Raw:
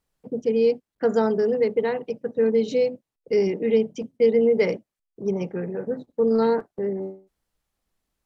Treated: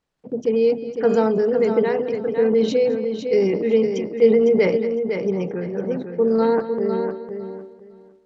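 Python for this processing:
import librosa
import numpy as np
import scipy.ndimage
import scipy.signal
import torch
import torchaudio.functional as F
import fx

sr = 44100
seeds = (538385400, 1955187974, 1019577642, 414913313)

y = fx.air_absorb(x, sr, metres=77.0)
y = y + 10.0 ** (-21.0 / 20.0) * np.pad(y, (int(217 * sr / 1000.0), 0))[:len(y)]
y = fx.transient(y, sr, attack_db=1, sustain_db=8)
y = fx.low_shelf(y, sr, hz=64.0, db=-11.0)
y = fx.echo_feedback(y, sr, ms=505, feedback_pct=19, wet_db=-7.0)
y = F.gain(torch.from_numpy(y), 2.0).numpy()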